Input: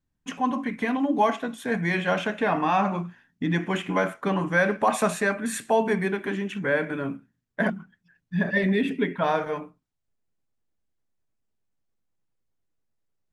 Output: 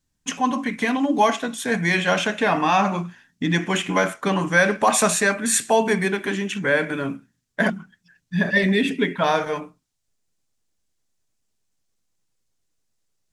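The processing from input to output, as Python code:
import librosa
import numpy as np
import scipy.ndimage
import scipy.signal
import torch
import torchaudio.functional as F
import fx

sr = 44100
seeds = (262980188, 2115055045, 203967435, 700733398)

y = fx.peak_eq(x, sr, hz=6700.0, db=12.0, octaves=2.1)
y = y * 10.0 ** (3.0 / 20.0)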